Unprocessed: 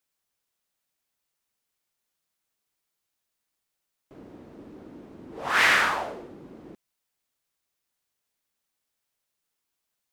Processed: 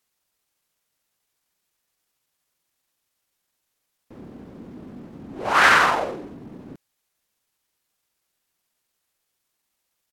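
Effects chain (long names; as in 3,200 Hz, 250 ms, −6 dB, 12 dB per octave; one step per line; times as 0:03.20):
pitch shifter −3.5 semitones
level +5.5 dB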